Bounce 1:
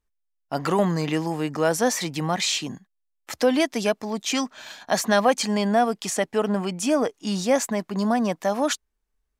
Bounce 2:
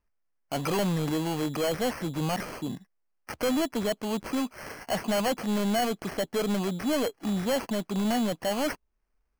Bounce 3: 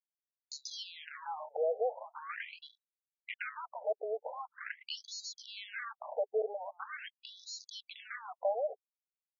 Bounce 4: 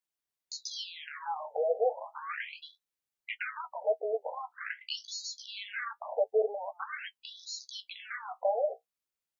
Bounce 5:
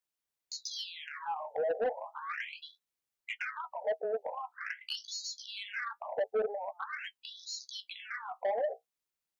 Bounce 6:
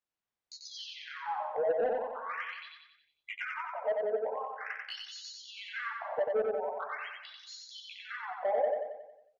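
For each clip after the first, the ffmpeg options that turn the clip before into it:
-filter_complex "[0:a]acrossover=split=1400[a][b];[b]acompressor=threshold=-38dB:ratio=12[c];[a][c]amix=inputs=2:normalize=0,acrusher=samples=12:mix=1:aa=0.000001,asoftclip=type=tanh:threshold=-24dB,volume=1dB"
-af "anlmdn=1,acompressor=threshold=-34dB:ratio=8,afftfilt=real='re*between(b*sr/1024,550*pow(5100/550,0.5+0.5*sin(2*PI*0.43*pts/sr))/1.41,550*pow(5100/550,0.5+0.5*sin(2*PI*0.43*pts/sr))*1.41)':imag='im*between(b*sr/1024,550*pow(5100/550,0.5+0.5*sin(2*PI*0.43*pts/sr))/1.41,550*pow(5100/550,0.5+0.5*sin(2*PI*0.43*pts/sr))*1.41)':win_size=1024:overlap=0.75,volume=6.5dB"
-af "flanger=delay=8.9:depth=8.8:regen=-40:speed=0.3:shape=sinusoidal,volume=8dB"
-af "asoftclip=type=tanh:threshold=-25.5dB"
-filter_complex "[0:a]aemphasis=mode=reproduction:type=75fm,asplit=2[a][b];[b]aecho=0:1:91|182|273|364|455|546|637:0.708|0.368|0.191|0.0995|0.0518|0.0269|0.014[c];[a][c]amix=inputs=2:normalize=0"

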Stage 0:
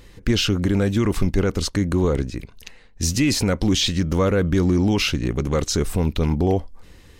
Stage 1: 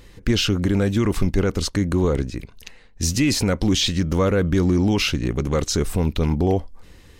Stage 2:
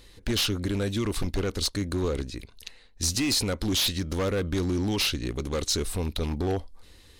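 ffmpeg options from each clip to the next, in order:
-af anull
-filter_complex "[0:a]equalizer=f=160:t=o:w=0.67:g=-7,equalizer=f=4k:t=o:w=0.67:g=9,equalizer=f=10k:t=o:w=0.67:g=8,acrossover=split=6700[a][b];[a]aeval=exprs='0.2*(abs(mod(val(0)/0.2+3,4)-2)-1)':c=same[c];[c][b]amix=inputs=2:normalize=0,volume=-6.5dB"

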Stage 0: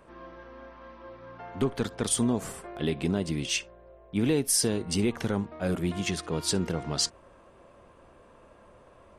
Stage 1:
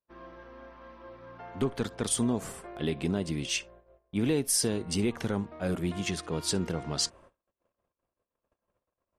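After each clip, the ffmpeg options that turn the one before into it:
-af "agate=range=-39dB:threshold=-50dB:ratio=16:detection=peak,volume=-2dB"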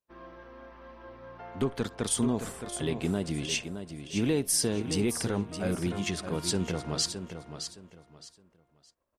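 -af "aecho=1:1:616|1232|1848:0.355|0.0923|0.024"

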